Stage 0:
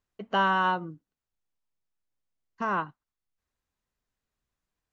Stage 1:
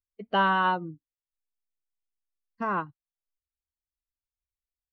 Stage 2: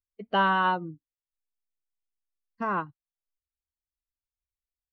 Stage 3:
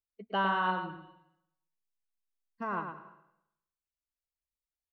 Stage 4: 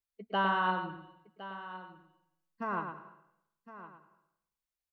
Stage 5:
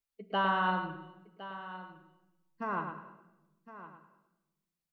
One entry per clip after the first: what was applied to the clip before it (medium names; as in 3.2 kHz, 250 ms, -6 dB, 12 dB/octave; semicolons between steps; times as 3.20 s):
expander on every frequency bin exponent 1.5; Chebyshev low-pass 4.3 kHz, order 3; trim +2.5 dB
no audible change
delay 108 ms -7 dB; reverberation RT60 0.80 s, pre-delay 171 ms, DRR 16 dB; trim -6.5 dB
delay 1061 ms -14.5 dB
simulated room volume 510 m³, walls mixed, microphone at 0.36 m